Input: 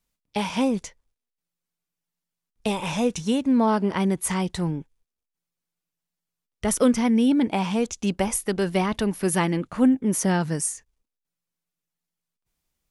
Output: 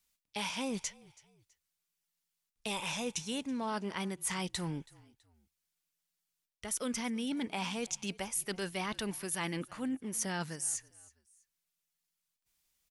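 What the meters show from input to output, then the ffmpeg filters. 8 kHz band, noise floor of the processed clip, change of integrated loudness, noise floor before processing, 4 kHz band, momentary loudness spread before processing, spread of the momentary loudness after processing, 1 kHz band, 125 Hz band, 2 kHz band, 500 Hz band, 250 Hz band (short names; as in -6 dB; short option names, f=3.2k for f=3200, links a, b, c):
-6.5 dB, under -85 dBFS, -13.0 dB, under -85 dBFS, -5.0 dB, 9 LU, 4 LU, -12.5 dB, -15.0 dB, -7.5 dB, -15.5 dB, -16.5 dB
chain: -filter_complex "[0:a]tiltshelf=f=1.2k:g=-6.5,areverse,acompressor=threshold=-31dB:ratio=6,areverse,asplit=3[a][b][c];[b]adelay=327,afreqshift=-39,volume=-23dB[d];[c]adelay=654,afreqshift=-78,volume=-31.9dB[e];[a][d][e]amix=inputs=3:normalize=0,volume=-2.5dB"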